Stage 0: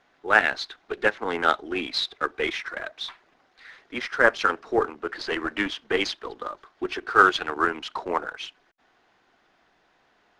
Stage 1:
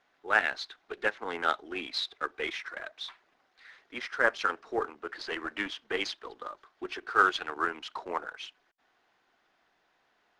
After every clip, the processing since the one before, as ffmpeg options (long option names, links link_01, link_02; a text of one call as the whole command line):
ffmpeg -i in.wav -af "lowshelf=frequency=400:gain=-6,volume=-6dB" out.wav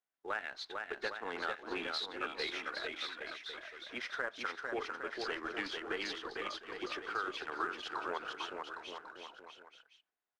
ffmpeg -i in.wav -af "agate=range=-24dB:threshold=-56dB:ratio=16:detection=peak,acompressor=threshold=-32dB:ratio=6,aecho=1:1:450|810|1098|1328|1513:0.631|0.398|0.251|0.158|0.1,volume=-3dB" out.wav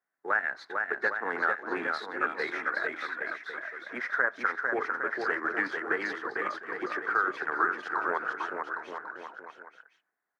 ffmpeg -i in.wav -af "highpass=frequency=120:width=0.5412,highpass=frequency=120:width=1.3066,highshelf=frequency=2300:width_type=q:width=3:gain=-9,volume=6.5dB" out.wav